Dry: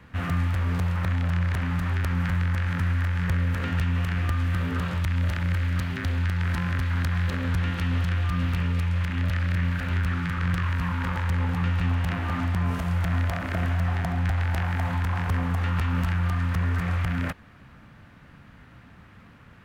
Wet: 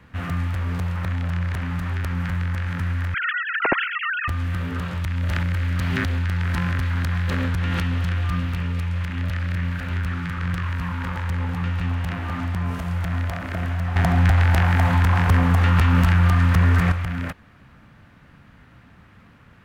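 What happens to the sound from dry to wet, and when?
3.14–4.28 sine-wave speech
5.23–8.4 fast leveller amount 100%
13.96–16.92 gain +8.5 dB

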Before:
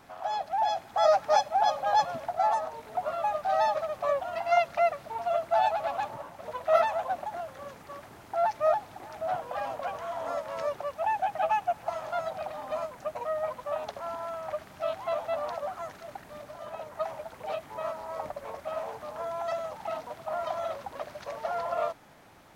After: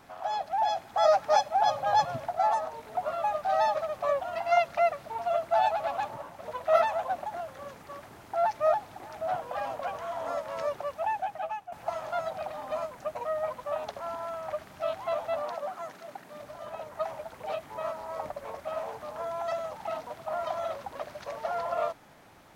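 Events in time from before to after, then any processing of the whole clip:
1.65–2.26 bell 120 Hz +12.5 dB 0.58 oct
10.92–11.72 fade out, to -16 dB
15.42–16.4 Chebyshev high-pass 190 Hz

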